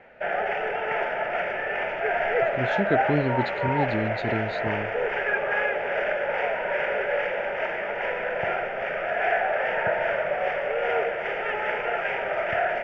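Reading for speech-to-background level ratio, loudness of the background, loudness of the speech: -3.5 dB, -26.0 LUFS, -29.5 LUFS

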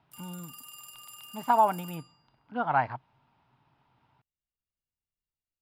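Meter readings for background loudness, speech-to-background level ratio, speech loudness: -46.0 LUFS, 18.0 dB, -28.0 LUFS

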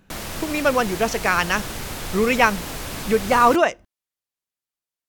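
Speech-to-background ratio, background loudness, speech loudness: 11.0 dB, -31.0 LUFS, -20.0 LUFS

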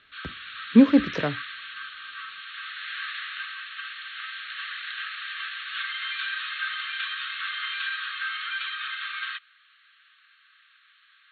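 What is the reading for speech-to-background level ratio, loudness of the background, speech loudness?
12.0 dB, -32.5 LUFS, -20.5 LUFS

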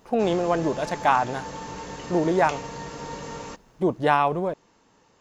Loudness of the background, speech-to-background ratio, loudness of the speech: -36.5 LUFS, 12.5 dB, -24.0 LUFS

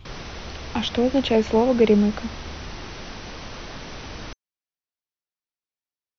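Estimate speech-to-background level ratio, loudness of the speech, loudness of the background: 16.0 dB, -20.5 LUFS, -36.5 LUFS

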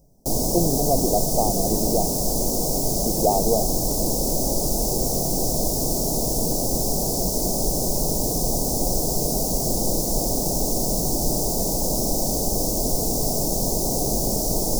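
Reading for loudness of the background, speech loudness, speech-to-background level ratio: -22.5 LUFS, -25.5 LUFS, -3.0 dB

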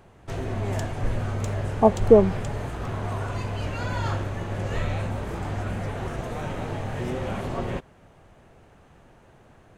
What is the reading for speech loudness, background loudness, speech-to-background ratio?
-19.5 LUFS, -30.5 LUFS, 11.0 dB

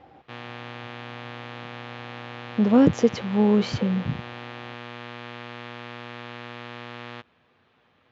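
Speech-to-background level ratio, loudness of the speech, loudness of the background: 16.5 dB, -22.0 LUFS, -38.5 LUFS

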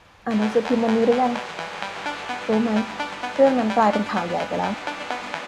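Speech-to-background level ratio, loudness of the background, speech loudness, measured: 8.5 dB, -30.5 LUFS, -22.0 LUFS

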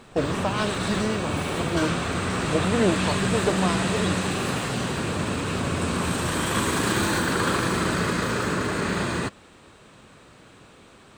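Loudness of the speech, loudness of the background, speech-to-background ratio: -28.5 LUFS, -25.5 LUFS, -3.0 dB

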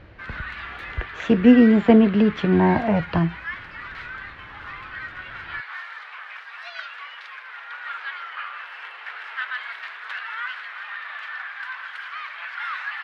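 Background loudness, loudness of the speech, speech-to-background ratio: -33.5 LUFS, -17.5 LUFS, 16.0 dB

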